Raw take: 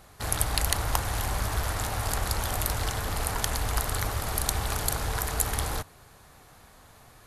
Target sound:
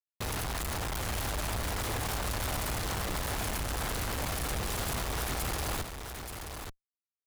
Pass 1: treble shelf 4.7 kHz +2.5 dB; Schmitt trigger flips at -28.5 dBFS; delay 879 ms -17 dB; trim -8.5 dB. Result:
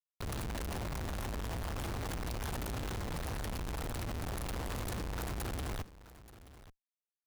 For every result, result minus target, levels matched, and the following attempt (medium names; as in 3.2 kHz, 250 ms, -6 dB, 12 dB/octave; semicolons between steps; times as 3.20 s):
echo-to-direct -10 dB; 8 kHz band -5.0 dB
treble shelf 4.7 kHz +2.5 dB; Schmitt trigger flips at -28.5 dBFS; delay 879 ms -7 dB; trim -8.5 dB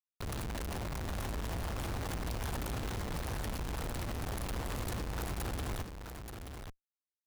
8 kHz band -4.5 dB
treble shelf 4.7 kHz +12 dB; Schmitt trigger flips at -28.5 dBFS; delay 879 ms -7 dB; trim -8.5 dB